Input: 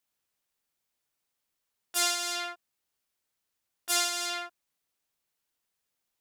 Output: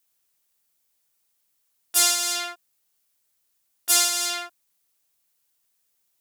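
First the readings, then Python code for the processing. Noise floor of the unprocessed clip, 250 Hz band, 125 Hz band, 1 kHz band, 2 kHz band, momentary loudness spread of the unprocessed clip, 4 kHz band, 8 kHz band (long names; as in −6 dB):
−83 dBFS, +2.5 dB, can't be measured, +3.0 dB, +4.0 dB, 14 LU, +6.5 dB, +10.0 dB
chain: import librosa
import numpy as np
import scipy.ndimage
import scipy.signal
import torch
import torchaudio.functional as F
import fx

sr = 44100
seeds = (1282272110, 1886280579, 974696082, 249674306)

y = fx.high_shelf(x, sr, hz=5400.0, db=11.0)
y = F.gain(torch.from_numpy(y), 2.5).numpy()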